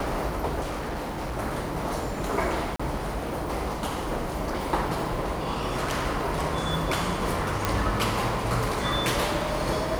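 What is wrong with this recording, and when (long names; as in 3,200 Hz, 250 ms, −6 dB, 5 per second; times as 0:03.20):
0:00.61–0:01.38: clipping −28 dBFS
0:02.76–0:02.79: drop-out 35 ms
0:07.65: click −8 dBFS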